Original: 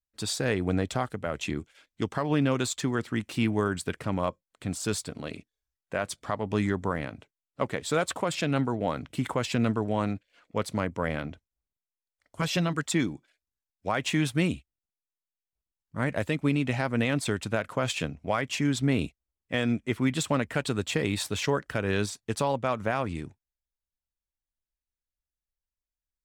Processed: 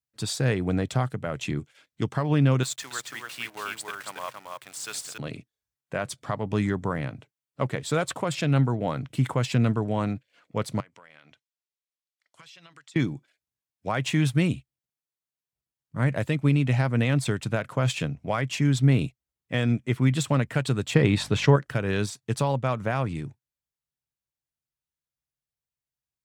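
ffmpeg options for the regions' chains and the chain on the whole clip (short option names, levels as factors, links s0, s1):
-filter_complex "[0:a]asettb=1/sr,asplit=3[s0][s1][s2];[s0]atrim=end=2.634[s3];[s1]atrim=start=2.63:end=5.18,asetpts=PTS-STARTPTS,afade=t=in:d=0.004:c=qsin,afade=t=out:st=2.546:d=0.004:c=qsin,highpass=1000,acrusher=bits=8:dc=4:mix=0:aa=0.000001,aecho=1:1:278:0.631,atrim=end_sample=112455[s4];[s2]atrim=start=5.176[s5];[s3][s4]acrossfade=d=0.004:c1=hsin:c2=qsin[s6];[s6][s5]acrossfade=d=0.004:c1=qsin:c2=hsin,asettb=1/sr,asplit=3[s7][s8][s9];[s7]atrim=end=10.804[s10];[s8]atrim=start=10.8:end=12.96,asetpts=PTS-STARTPTS,afade=t=in:d=0.004:c=qsin,afade=t=out:st=2.156:d=0.004:c=qsin,bandpass=f=3700:t=q:w=0.67,acompressor=threshold=0.00447:ratio=8:attack=3.2:release=140:knee=1:detection=peak[s11];[s9]atrim=start=12.956[s12];[s10][s11]acrossfade=d=0.004:c1=hsin:c2=qsin[s13];[s13][s12]acrossfade=d=0.004:c1=qsin:c2=hsin,asettb=1/sr,asplit=3[s14][s15][s16];[s14]atrim=end=20.944[s17];[s15]atrim=start=20.94:end=21.56,asetpts=PTS-STARTPTS,afade=t=in:d=0.004:c=qsin,afade=t=out:st=0.616:d=0.004:c=qsin,aemphasis=mode=reproduction:type=50fm,acontrast=38,aeval=exprs='val(0)+0.00501*(sin(2*PI*50*n/s)+sin(2*PI*2*50*n/s)/2+sin(2*PI*3*50*n/s)/3+sin(2*PI*4*50*n/s)/4+sin(2*PI*5*50*n/s)/5)':c=same[s18];[s16]atrim=start=21.556[s19];[s17][s18]acrossfade=d=0.004:c1=hsin:c2=qsin[s20];[s20][s19]acrossfade=d=0.004:c1=qsin:c2=hsin,highpass=78,equalizer=f=130:t=o:w=0.55:g=11"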